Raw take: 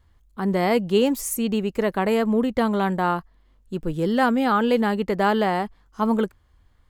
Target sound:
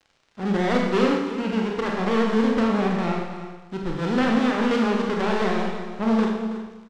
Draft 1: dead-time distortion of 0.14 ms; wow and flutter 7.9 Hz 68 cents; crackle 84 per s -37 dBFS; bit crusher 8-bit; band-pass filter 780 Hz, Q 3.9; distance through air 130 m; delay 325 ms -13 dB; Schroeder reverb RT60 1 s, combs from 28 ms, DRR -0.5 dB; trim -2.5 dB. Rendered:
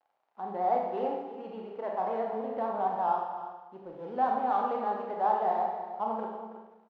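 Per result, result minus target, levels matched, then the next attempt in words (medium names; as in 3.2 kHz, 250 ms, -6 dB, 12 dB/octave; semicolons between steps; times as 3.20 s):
1 kHz band +8.5 dB; dead-time distortion: distortion -11 dB
dead-time distortion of 0.14 ms; wow and flutter 7.9 Hz 68 cents; crackle 84 per s -37 dBFS; bit crusher 8-bit; distance through air 130 m; delay 325 ms -13 dB; Schroeder reverb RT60 1 s, combs from 28 ms, DRR -0.5 dB; trim -2.5 dB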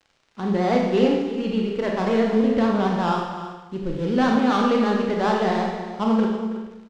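dead-time distortion: distortion -11 dB
dead-time distortion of 0.5 ms; wow and flutter 7.9 Hz 68 cents; crackle 84 per s -37 dBFS; bit crusher 8-bit; distance through air 130 m; delay 325 ms -13 dB; Schroeder reverb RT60 1 s, combs from 28 ms, DRR -0.5 dB; trim -2.5 dB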